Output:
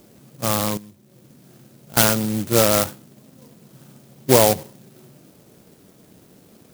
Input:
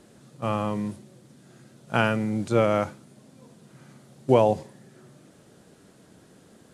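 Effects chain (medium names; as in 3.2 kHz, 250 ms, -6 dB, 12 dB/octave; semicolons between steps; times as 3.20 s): dynamic bell 1.7 kHz, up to +7 dB, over -41 dBFS, Q 0.97; 0.77–1.97 s: compression 5:1, threshold -46 dBFS, peak gain reduction 24.5 dB; sampling jitter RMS 0.15 ms; trim +3.5 dB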